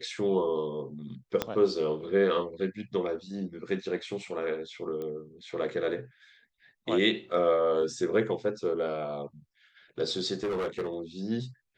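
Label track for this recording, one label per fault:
1.420000	1.420000	click −12 dBFS
5.020000	5.020000	click −26 dBFS
7.820000	7.820000	drop-out 3.2 ms
10.430000	10.940000	clipping −27 dBFS

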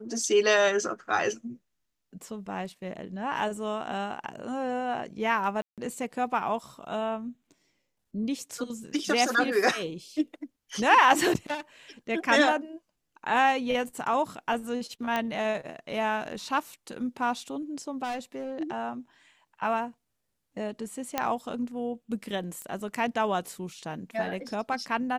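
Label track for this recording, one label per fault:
5.620000	5.780000	drop-out 157 ms
15.160000	15.160000	click −15 dBFS
18.030000	18.530000	clipping −29 dBFS
21.180000	21.180000	click −11 dBFS
22.620000	22.620000	click −24 dBFS

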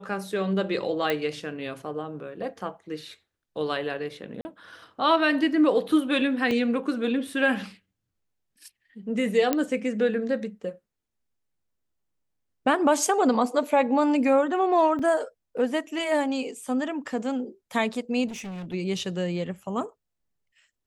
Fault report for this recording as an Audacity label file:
1.100000	1.100000	click −12 dBFS
4.410000	4.450000	drop-out 40 ms
6.510000	6.510000	drop-out 2.1 ms
9.530000	9.530000	click −9 dBFS
14.990000	14.990000	drop-out 4 ms
18.270000	18.740000	clipping −33.5 dBFS

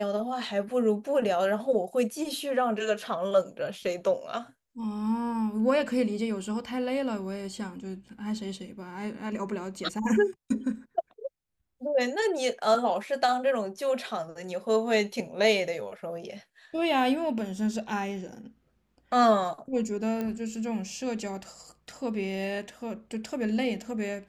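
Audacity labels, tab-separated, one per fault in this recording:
20.210000	20.210000	click −20 dBFS

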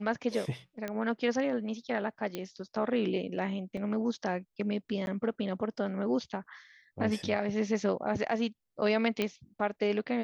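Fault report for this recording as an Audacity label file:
0.880000	0.880000	click −21 dBFS
2.350000	2.350000	click −20 dBFS
3.770000	3.770000	drop-out 3.1 ms
5.060000	5.070000	drop-out 11 ms
9.220000	9.220000	click −16 dBFS

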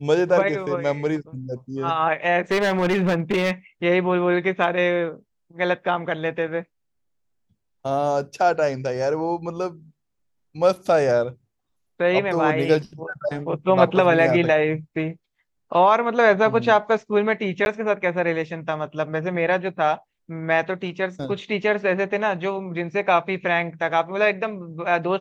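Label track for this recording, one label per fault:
2.510000	3.510000	clipping −16.5 dBFS
17.650000	17.660000	drop-out 11 ms

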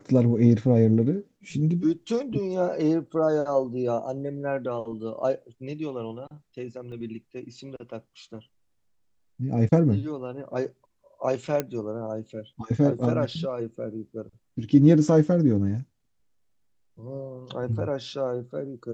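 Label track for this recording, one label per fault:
6.920000	6.920000	drop-out 2.9 ms
11.600000	11.600000	click −12 dBFS

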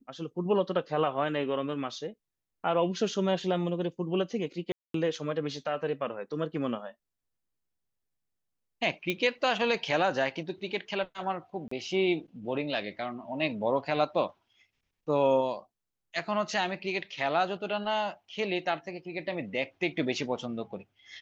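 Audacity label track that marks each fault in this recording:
4.720000	4.940000	drop-out 223 ms
9.100000	9.100000	click −16 dBFS
11.680000	11.710000	drop-out 34 ms

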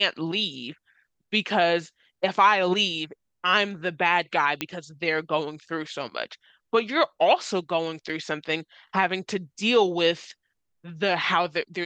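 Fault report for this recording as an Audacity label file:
4.610000	4.610000	click −11 dBFS
8.090000	8.090000	drop-out 4.9 ms

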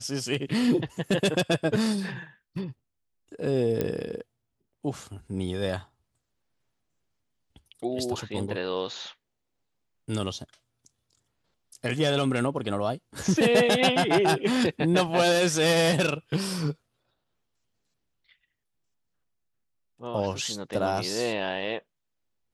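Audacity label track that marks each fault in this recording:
3.810000	3.810000	click −14 dBFS

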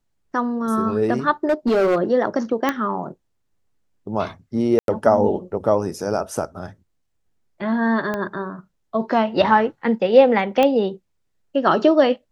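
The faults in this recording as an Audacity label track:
1.490000	2.020000	clipping −14 dBFS
2.690000	2.690000	click −7 dBFS
4.790000	4.880000	drop-out 92 ms
8.140000	8.140000	click −13 dBFS
10.630000	10.630000	click −7 dBFS

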